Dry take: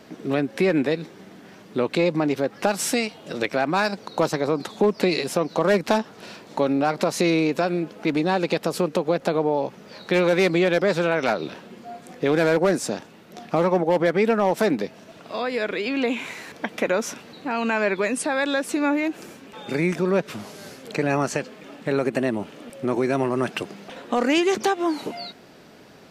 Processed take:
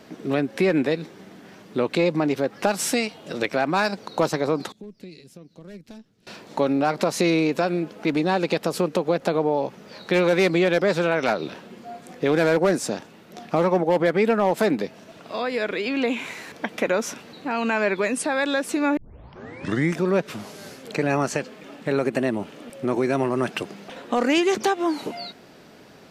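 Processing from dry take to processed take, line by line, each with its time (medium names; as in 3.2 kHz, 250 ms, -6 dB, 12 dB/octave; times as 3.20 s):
4.72–6.27 s: amplifier tone stack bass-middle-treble 10-0-1
13.94–14.84 s: band-stop 5.7 kHz
18.97 s: tape start 0.97 s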